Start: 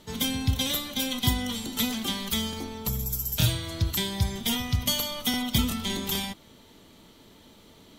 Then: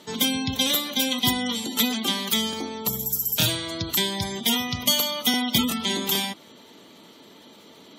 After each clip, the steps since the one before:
high-pass filter 220 Hz 12 dB per octave
gate on every frequency bin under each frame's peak −25 dB strong
level +6 dB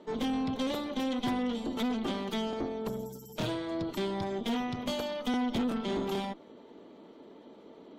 resonant band-pass 410 Hz, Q 0.93
tube saturation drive 31 dB, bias 0.65
level +4.5 dB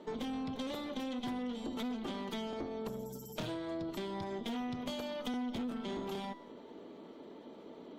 tuned comb filter 82 Hz, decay 0.57 s, harmonics all, mix 50%
downward compressor 4 to 1, threshold −43 dBFS, peak gain reduction 11 dB
level +5.5 dB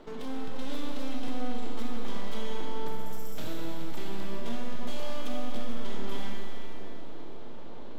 half-wave rectification
four-comb reverb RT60 3.3 s, combs from 30 ms, DRR −0.5 dB
level +5.5 dB

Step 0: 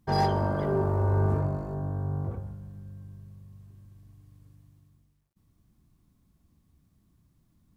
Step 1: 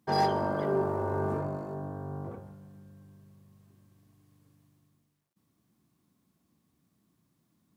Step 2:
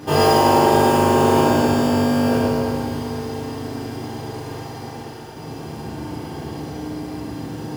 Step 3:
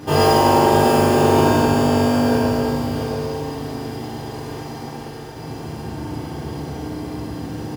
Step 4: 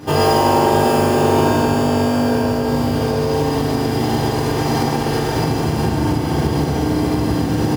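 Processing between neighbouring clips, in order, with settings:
high-pass filter 200 Hz 12 dB per octave
compressor on every frequency bin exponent 0.4; in parallel at −5 dB: decimation without filtering 22×; on the sum: feedback delay network reverb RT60 2.1 s, low-frequency decay 1.5×, high-frequency decay 0.85×, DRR −9.5 dB
low-shelf EQ 70 Hz +7.5 dB; single-tap delay 679 ms −9 dB
camcorder AGC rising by 32 dB per second

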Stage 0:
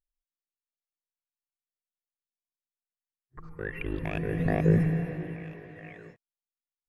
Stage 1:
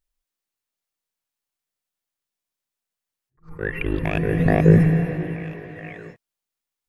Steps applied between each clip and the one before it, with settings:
level that may rise only so fast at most 230 dB per second
level +9 dB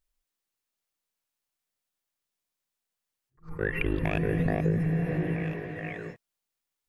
downward compressor 8 to 1, threshold −23 dBFS, peak gain reduction 15 dB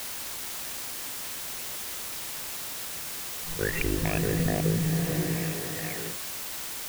bit-depth reduction 6 bits, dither triangular

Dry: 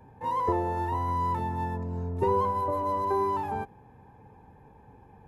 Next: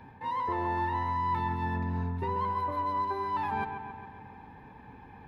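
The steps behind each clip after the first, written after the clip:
octave-band graphic EQ 250/500/1,000/2,000/4,000/8,000 Hz +5/−4/+4/+10/+11/−8 dB
reversed playback
downward compressor, threshold −30 dBFS, peak gain reduction 11.5 dB
reversed playback
delay with a low-pass on its return 137 ms, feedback 61%, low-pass 2,700 Hz, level −8 dB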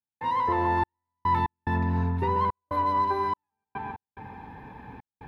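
gate pattern ".xxx..x.xxxx" 72 BPM −60 dB
level +6 dB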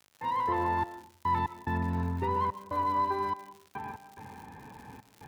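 surface crackle 140 per second −38 dBFS
high-pass filter 70 Hz
convolution reverb RT60 0.45 s, pre-delay 110 ms, DRR 13 dB
level −4 dB

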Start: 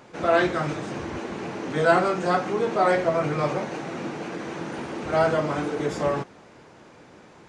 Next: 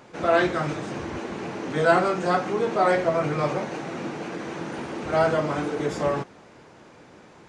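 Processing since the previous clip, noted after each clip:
no processing that can be heard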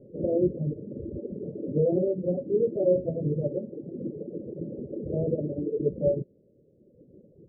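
reverb reduction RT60 1.8 s
Chebyshev low-pass with heavy ripple 580 Hz, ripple 3 dB
level +3.5 dB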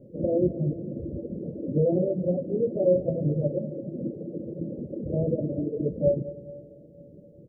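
parametric band 410 Hz −8.5 dB 0.32 octaves
repeating echo 211 ms, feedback 47%, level −15.5 dB
on a send at −18 dB: convolution reverb RT60 5.5 s, pre-delay 102 ms
on the sum: level +3 dB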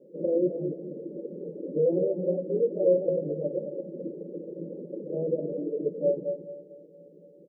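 elliptic high-pass filter 170 Hz, stop band 40 dB
comb filter 2.2 ms, depth 61%
slap from a distant wall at 38 metres, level −9 dB
level −3 dB

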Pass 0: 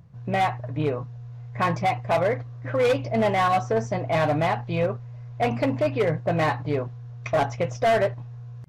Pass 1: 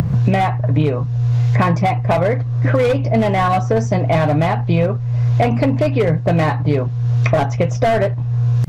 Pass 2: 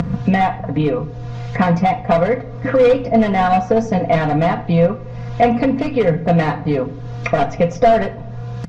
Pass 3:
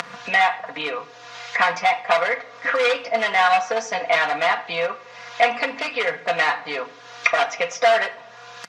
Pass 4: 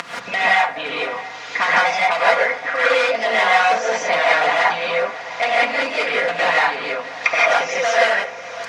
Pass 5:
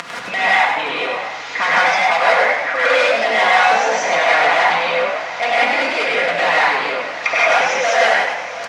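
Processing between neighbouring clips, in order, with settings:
in parallel at +1.5 dB: upward compression, threshold −25 dBFS; on the sum: low-shelf EQ 230 Hz +10.5 dB; multiband upward and downward compressor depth 100%; level −3 dB
high-frequency loss of the air 80 metres; comb filter 4.2 ms, depth 77%; rectangular room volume 3,300 cubic metres, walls furnished, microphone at 0.84 metres; level −1 dB
high-pass filter 1,300 Hz 12 dB per octave; level +7 dB
feedback delay with all-pass diffusion 644 ms, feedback 46%, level −15 dB; reverb whose tail is shaped and stops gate 200 ms rising, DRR −6.5 dB; harmonic and percussive parts rebalanced harmonic −7 dB; level +1 dB
transient designer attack −3 dB, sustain +2 dB; in parallel at −12 dB: soft clipping −14 dBFS, distortion −13 dB; on the sum: echo with shifted repeats 100 ms, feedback 46%, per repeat +66 Hz, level −5.5 dB

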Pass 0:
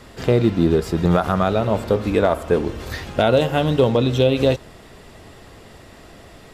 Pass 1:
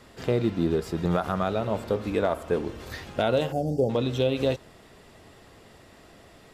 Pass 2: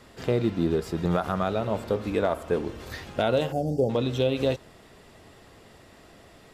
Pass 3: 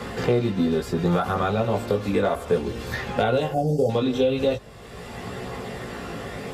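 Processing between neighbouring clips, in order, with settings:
gain on a spectral selection 0:03.52–0:03.90, 850–4,400 Hz −27 dB; low-shelf EQ 73 Hz −6.5 dB; level −7.5 dB
no processing that can be heard
notch comb filter 320 Hz; multi-voice chorus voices 2, 0.36 Hz, delay 18 ms, depth 2 ms; multiband upward and downward compressor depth 70%; level +7.5 dB

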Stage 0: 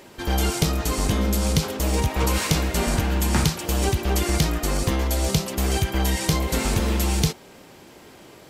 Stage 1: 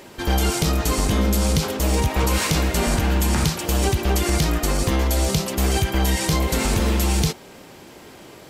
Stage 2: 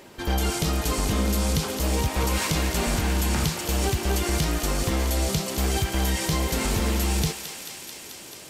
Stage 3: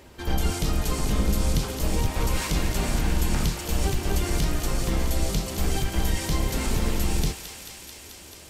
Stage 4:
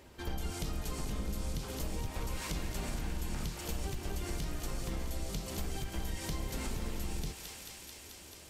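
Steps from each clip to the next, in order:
brickwall limiter −14.5 dBFS, peak gain reduction 5.5 dB; level +3.5 dB
feedback echo with a high-pass in the loop 219 ms, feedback 84%, high-pass 910 Hz, level −8 dB; level −4.5 dB
sub-octave generator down 2 octaves, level +4 dB; level −3.5 dB
downward compressor, threshold −26 dBFS, peak gain reduction 8 dB; level −7 dB

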